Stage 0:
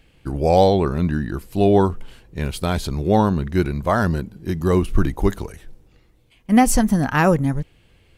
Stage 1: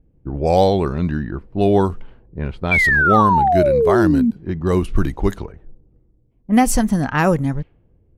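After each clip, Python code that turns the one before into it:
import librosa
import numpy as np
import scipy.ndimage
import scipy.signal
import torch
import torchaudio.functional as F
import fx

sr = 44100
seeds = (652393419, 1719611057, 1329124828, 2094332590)

y = fx.spec_paint(x, sr, seeds[0], shape='fall', start_s=2.71, length_s=1.6, low_hz=220.0, high_hz=2400.0, level_db=-15.0)
y = fx.env_lowpass(y, sr, base_hz=360.0, full_db=-13.0)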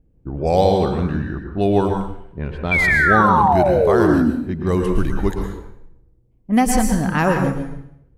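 y = fx.rev_plate(x, sr, seeds[1], rt60_s=0.68, hf_ratio=0.9, predelay_ms=100, drr_db=3.0)
y = F.gain(torch.from_numpy(y), -2.0).numpy()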